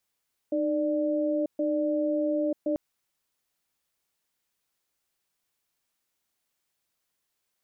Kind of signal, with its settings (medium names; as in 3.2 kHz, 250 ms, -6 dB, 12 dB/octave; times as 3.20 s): cadence 306 Hz, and 590 Hz, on 0.94 s, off 0.13 s, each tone -26.5 dBFS 2.24 s